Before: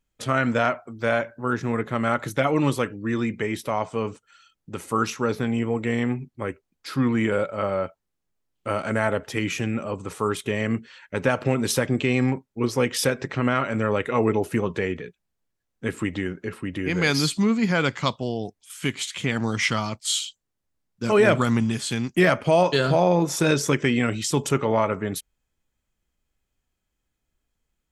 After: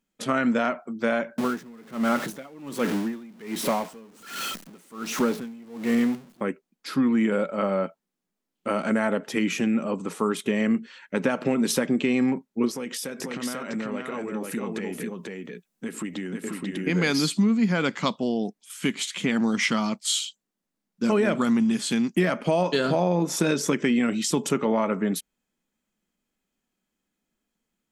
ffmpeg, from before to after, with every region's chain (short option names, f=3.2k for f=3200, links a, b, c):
-filter_complex "[0:a]asettb=1/sr,asplit=3[a][b][c];[a]atrim=end=1.384[d];[b]atrim=start=1.38:end=6.41,asetpts=PTS-STARTPTS,afade=t=in:d=0.004:c=qsin,afade=t=out:st=5.026:d=0.004:c=qsin,aeval=exprs='val(0)+0.5*0.0596*sgn(val(0))':c=same,aeval=exprs='val(0)*pow(10,-28*(0.5-0.5*cos(2*PI*1.3*n/s))/20)':c=same[e];[c]atrim=start=6.406[f];[d][e]acrossfade=d=0.004:c1=hsin:c2=qsin[g];[g][f]acrossfade=d=0.004:c1=qsin:c2=hsin,asettb=1/sr,asplit=3[h][i][j];[h]atrim=end=12.714[k];[i]atrim=start=12.71:end=16.87,asetpts=PTS-STARTPTS,afade=t=in:d=0.004:c=qsin,afade=t=out:st=4.156:d=0.004:c=qsin,highshelf=f=5.7k:g=9.5,acompressor=threshold=-31dB:ratio=5:attack=3.2:release=140:knee=1:detection=peak,aecho=1:1:490:0.708,atrim=end_sample=183456[l];[j]atrim=start=16.866[m];[k][l]acrossfade=d=0.004:c1=hsin:c2=qsin[n];[n][m]acrossfade=d=0.004:c1=qsin:c2=hsin,lowshelf=f=140:t=q:w=3:g=-12,acompressor=threshold=-19dB:ratio=4"